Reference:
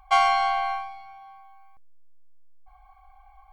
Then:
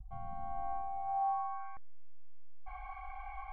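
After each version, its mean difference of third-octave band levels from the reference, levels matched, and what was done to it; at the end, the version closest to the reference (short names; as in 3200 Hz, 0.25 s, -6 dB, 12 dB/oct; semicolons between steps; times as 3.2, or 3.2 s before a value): 11.0 dB: gate with hold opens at -48 dBFS; in parallel at +1 dB: compressor, threshold -37 dBFS, peak gain reduction 20 dB; on the sum: low-pass sweep 130 Hz -> 2300 Hz, 0.1–1.93; gain +1 dB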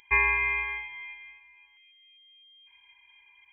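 7.5 dB: tilt +2.5 dB/oct; analogue delay 0.257 s, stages 2048, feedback 57%, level -8 dB; inverted band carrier 3200 Hz; gain -4 dB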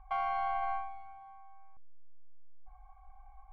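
3.5 dB: LPF 2000 Hz 12 dB/oct; tilt -1.5 dB/oct; limiter -19 dBFS, peak gain reduction 9.5 dB; gain -6 dB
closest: third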